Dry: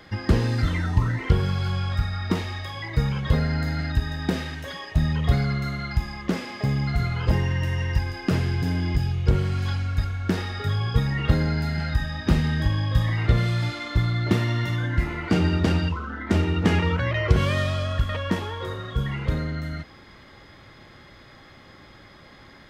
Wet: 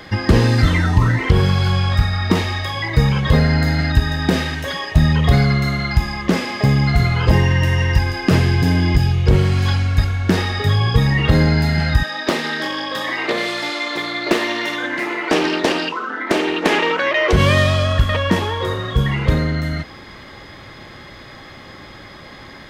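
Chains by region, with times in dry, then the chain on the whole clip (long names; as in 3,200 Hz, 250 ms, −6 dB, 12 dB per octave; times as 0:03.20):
0:12.03–0:17.33: high-pass filter 300 Hz 24 dB per octave + highs frequency-modulated by the lows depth 0.41 ms
whole clip: low-shelf EQ 200 Hz −3 dB; notch filter 1,400 Hz, Q 22; boost into a limiter +12 dB; level −1 dB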